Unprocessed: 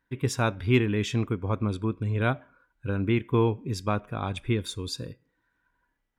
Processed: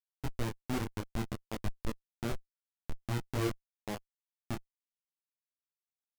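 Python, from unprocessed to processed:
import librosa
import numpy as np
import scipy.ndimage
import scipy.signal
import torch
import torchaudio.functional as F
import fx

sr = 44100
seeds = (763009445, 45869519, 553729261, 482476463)

y = scipy.signal.sosfilt(scipy.signal.butter(2, 1500.0, 'lowpass', fs=sr, output='sos'), x)
y = fx.power_curve(y, sr, exponent=2.0)
y = fx.schmitt(y, sr, flips_db=-27.5)
y = fx.detune_double(y, sr, cents=20)
y = F.gain(torch.from_numpy(y), 9.0).numpy()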